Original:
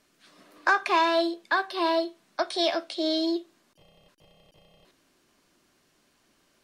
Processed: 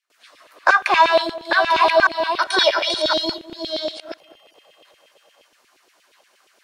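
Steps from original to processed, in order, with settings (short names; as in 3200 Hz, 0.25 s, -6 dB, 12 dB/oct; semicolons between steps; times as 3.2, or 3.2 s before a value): reverse delay 0.69 s, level -4 dB; gate with hold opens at -57 dBFS; 2.4–3.39 comb 2.1 ms, depth 85%; LFO high-pass saw down 8.5 Hz 410–2900 Hz; on a send: darkening echo 0.204 s, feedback 18%, low-pass 1100 Hz, level -14.5 dB; on the sum: gain +5.5 dB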